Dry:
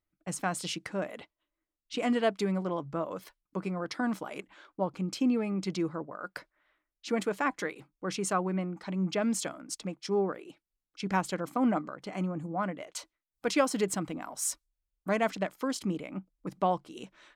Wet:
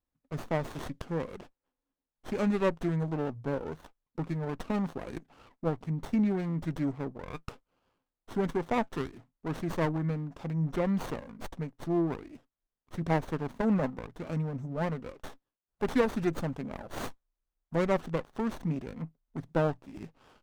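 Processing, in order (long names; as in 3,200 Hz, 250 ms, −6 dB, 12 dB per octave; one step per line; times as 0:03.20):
speed change −15%
windowed peak hold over 17 samples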